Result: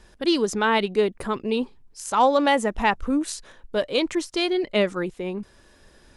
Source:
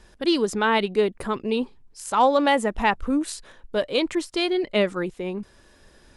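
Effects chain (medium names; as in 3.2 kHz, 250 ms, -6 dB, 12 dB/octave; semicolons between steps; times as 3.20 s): dynamic bell 6.1 kHz, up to +5 dB, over -52 dBFS, Q 3.3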